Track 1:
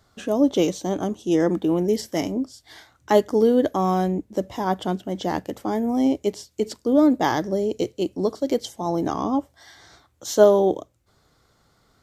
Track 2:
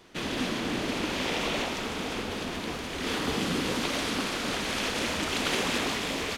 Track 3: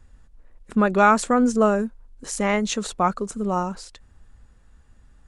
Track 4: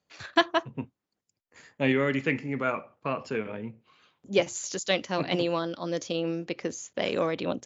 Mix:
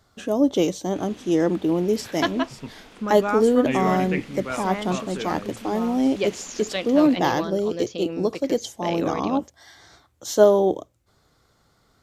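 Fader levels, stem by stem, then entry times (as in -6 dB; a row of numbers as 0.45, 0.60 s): -0.5, -16.0, -10.0, -2.0 dB; 0.00, 0.80, 2.25, 1.85 s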